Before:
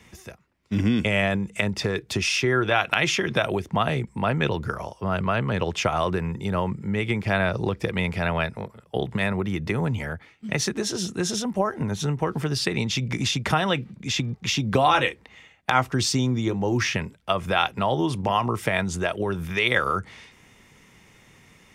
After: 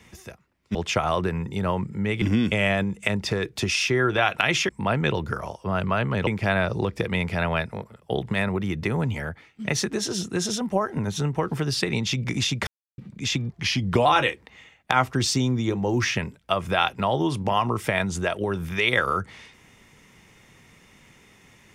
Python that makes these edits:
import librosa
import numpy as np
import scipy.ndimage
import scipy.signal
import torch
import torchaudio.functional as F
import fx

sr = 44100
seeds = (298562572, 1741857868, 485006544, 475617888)

y = fx.edit(x, sr, fx.cut(start_s=3.22, length_s=0.84),
    fx.move(start_s=5.64, length_s=1.47, to_s=0.75),
    fx.silence(start_s=13.51, length_s=0.31),
    fx.speed_span(start_s=14.36, length_s=0.48, speed=0.9), tone=tone)